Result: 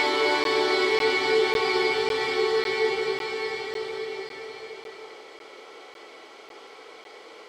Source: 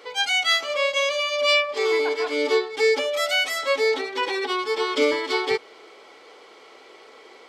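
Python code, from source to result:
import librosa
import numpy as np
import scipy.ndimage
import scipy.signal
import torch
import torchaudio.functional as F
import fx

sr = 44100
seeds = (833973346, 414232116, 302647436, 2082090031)

y = fx.paulstretch(x, sr, seeds[0], factor=8.0, window_s=1.0, from_s=5.31)
y = fx.buffer_crackle(y, sr, first_s=0.44, period_s=0.55, block=512, kind='zero')
y = F.gain(torch.from_numpy(y), 2.0).numpy()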